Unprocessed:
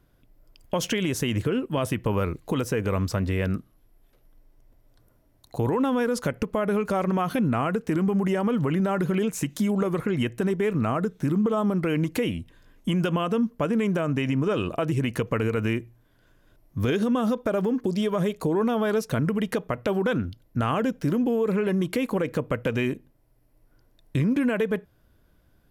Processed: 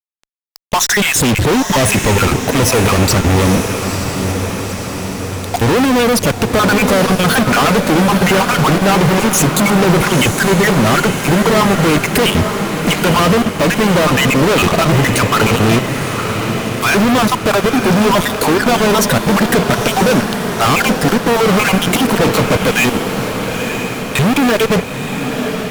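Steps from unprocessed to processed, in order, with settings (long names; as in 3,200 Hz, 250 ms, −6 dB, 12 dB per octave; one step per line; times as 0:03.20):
time-frequency cells dropped at random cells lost 39%
fuzz pedal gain 48 dB, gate −46 dBFS
feedback delay with all-pass diffusion 927 ms, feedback 65%, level −7 dB
level +2.5 dB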